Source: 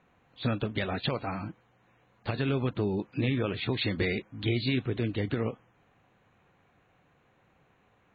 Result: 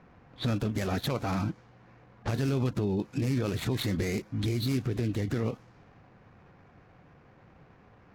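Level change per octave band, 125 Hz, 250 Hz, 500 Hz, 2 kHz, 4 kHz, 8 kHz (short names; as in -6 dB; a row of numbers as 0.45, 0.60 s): +2.0 dB, +1.0 dB, -1.5 dB, -4.5 dB, -3.0 dB, n/a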